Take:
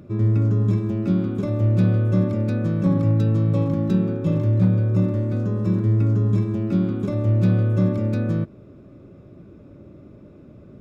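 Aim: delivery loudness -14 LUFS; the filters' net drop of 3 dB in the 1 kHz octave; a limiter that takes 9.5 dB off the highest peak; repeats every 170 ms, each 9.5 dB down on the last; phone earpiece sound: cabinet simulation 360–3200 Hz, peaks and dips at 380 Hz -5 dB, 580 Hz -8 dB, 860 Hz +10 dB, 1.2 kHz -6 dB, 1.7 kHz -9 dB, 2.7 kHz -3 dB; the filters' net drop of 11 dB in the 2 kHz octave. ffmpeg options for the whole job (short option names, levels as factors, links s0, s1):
-af "equalizer=f=1000:t=o:g=-5.5,equalizer=f=2000:t=o:g=-6,alimiter=limit=0.106:level=0:latency=1,highpass=360,equalizer=f=380:t=q:w=4:g=-5,equalizer=f=580:t=q:w=4:g=-8,equalizer=f=860:t=q:w=4:g=10,equalizer=f=1200:t=q:w=4:g=-6,equalizer=f=1700:t=q:w=4:g=-9,equalizer=f=2700:t=q:w=4:g=-3,lowpass=f=3200:w=0.5412,lowpass=f=3200:w=1.3066,aecho=1:1:170|340|510|680:0.335|0.111|0.0365|0.012,volume=16.8"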